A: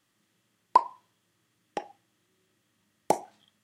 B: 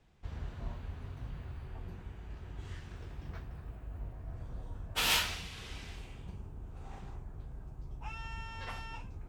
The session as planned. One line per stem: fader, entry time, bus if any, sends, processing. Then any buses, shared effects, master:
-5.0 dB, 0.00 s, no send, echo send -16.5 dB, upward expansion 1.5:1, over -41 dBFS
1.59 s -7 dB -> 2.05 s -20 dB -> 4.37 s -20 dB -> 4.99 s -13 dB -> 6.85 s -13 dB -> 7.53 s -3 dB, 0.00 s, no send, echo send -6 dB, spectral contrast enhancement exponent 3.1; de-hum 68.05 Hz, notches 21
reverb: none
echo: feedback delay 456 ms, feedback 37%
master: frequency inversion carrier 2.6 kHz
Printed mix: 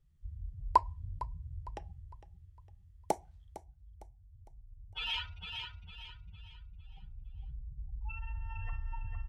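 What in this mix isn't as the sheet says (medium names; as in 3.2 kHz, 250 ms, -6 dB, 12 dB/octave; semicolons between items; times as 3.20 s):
stem B -7.0 dB -> -0.5 dB; master: missing frequency inversion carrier 2.6 kHz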